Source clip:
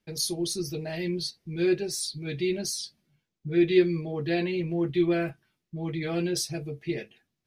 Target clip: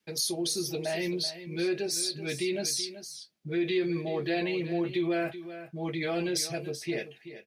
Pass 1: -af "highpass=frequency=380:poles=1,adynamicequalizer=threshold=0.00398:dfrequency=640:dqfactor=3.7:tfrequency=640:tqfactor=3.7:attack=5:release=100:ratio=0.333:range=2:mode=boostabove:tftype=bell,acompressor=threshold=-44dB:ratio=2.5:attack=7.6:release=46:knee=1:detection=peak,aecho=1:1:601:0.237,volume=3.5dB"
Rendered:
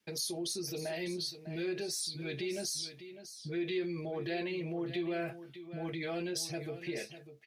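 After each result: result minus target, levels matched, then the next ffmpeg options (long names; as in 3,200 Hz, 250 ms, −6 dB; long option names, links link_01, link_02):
echo 220 ms late; downward compressor: peak gain reduction +6.5 dB
-af "highpass=frequency=380:poles=1,adynamicequalizer=threshold=0.00398:dfrequency=640:dqfactor=3.7:tfrequency=640:tqfactor=3.7:attack=5:release=100:ratio=0.333:range=2:mode=boostabove:tftype=bell,acompressor=threshold=-44dB:ratio=2.5:attack=7.6:release=46:knee=1:detection=peak,aecho=1:1:381:0.237,volume=3.5dB"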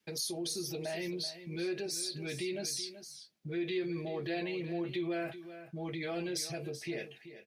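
downward compressor: peak gain reduction +6.5 dB
-af "highpass=frequency=380:poles=1,adynamicequalizer=threshold=0.00398:dfrequency=640:dqfactor=3.7:tfrequency=640:tqfactor=3.7:attack=5:release=100:ratio=0.333:range=2:mode=boostabove:tftype=bell,acompressor=threshold=-33dB:ratio=2.5:attack=7.6:release=46:knee=1:detection=peak,aecho=1:1:381:0.237,volume=3.5dB"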